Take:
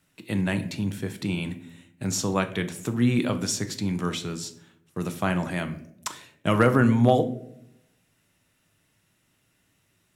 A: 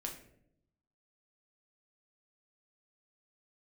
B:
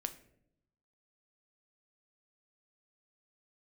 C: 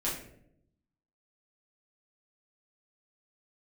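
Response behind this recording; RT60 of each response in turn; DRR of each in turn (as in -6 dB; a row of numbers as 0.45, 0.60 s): B; 0.75, 0.75, 0.70 s; 1.0, 8.5, -7.0 dB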